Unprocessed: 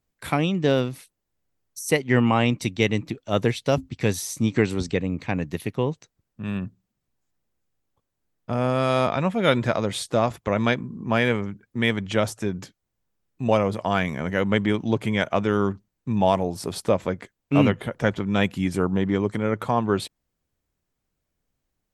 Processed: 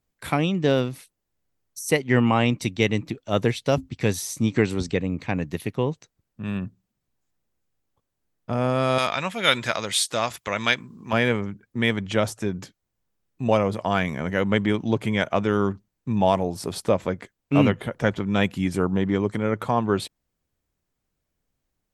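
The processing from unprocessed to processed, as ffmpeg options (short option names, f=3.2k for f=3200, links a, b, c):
-filter_complex "[0:a]asettb=1/sr,asplit=3[a][b][c];[a]atrim=end=8.984[d];[b]atrim=start=8.98:end=11.13,asetpts=PTS-STARTPTS,afade=t=in:d=0.004:c=qsin,afade=t=out:st=2.146:d=0.004:c=qsin,tiltshelf=f=1.1k:g=-9.5[e];[c]atrim=start=11.126[f];[d][e]acrossfade=d=0.004:c1=hsin:c2=qsin[g];[g][f]acrossfade=d=0.004:c1=qsin:c2=hsin"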